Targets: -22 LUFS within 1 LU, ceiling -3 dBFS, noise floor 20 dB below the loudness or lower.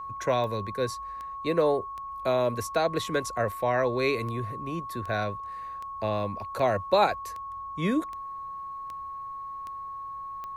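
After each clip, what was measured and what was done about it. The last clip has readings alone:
clicks found 14; steady tone 1.1 kHz; tone level -35 dBFS; loudness -29.5 LUFS; peak level -9.5 dBFS; loudness target -22.0 LUFS
-> de-click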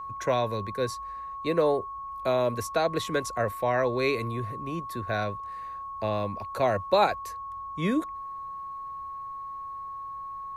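clicks found 0; steady tone 1.1 kHz; tone level -35 dBFS
-> band-stop 1.1 kHz, Q 30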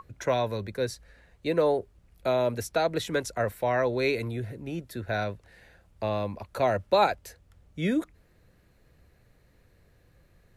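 steady tone not found; loudness -28.5 LUFS; peak level -10.5 dBFS; loudness target -22.0 LUFS
-> trim +6.5 dB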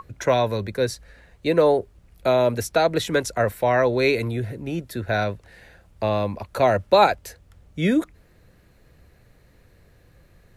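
loudness -22.0 LUFS; peak level -4.0 dBFS; noise floor -56 dBFS

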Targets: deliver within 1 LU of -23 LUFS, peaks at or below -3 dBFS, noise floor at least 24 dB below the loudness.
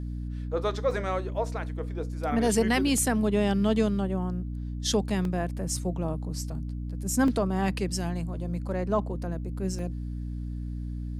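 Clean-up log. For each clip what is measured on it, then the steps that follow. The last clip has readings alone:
dropouts 5; longest dropout 1.9 ms; hum 60 Hz; highest harmonic 300 Hz; hum level -31 dBFS; loudness -29.0 LUFS; peak level -11.0 dBFS; loudness target -23.0 LUFS
-> interpolate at 0.91/2.98/5.25/7.28/9.79 s, 1.9 ms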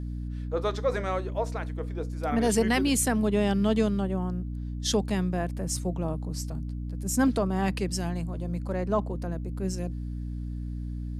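dropouts 0; hum 60 Hz; highest harmonic 300 Hz; hum level -31 dBFS
-> de-hum 60 Hz, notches 5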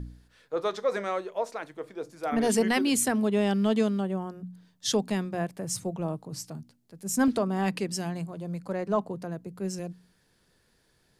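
hum not found; loudness -29.0 LUFS; peak level -12.0 dBFS; loudness target -23.0 LUFS
-> trim +6 dB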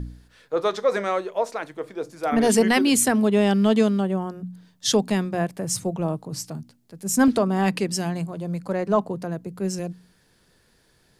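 loudness -23.0 LUFS; peak level -6.0 dBFS; noise floor -62 dBFS

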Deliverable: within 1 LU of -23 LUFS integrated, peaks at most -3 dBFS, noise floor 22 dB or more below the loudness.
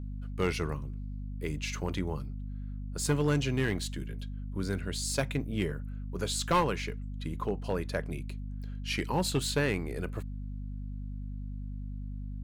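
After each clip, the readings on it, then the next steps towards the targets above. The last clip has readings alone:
clipped samples 0.4%; clipping level -20.5 dBFS; hum 50 Hz; highest harmonic 250 Hz; hum level -35 dBFS; loudness -33.5 LUFS; peak level -20.5 dBFS; loudness target -23.0 LUFS
-> clip repair -20.5 dBFS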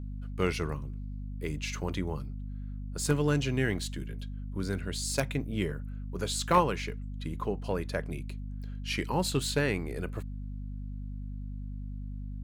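clipped samples 0.0%; hum 50 Hz; highest harmonic 250 Hz; hum level -35 dBFS
-> de-hum 50 Hz, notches 5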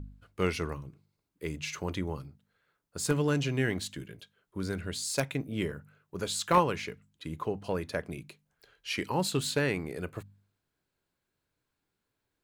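hum not found; loudness -32.5 LUFS; peak level -10.5 dBFS; loudness target -23.0 LUFS
-> trim +9.5 dB; peak limiter -3 dBFS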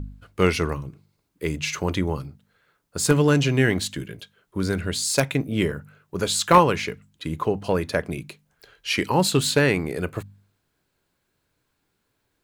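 loudness -23.0 LUFS; peak level -3.0 dBFS; noise floor -74 dBFS

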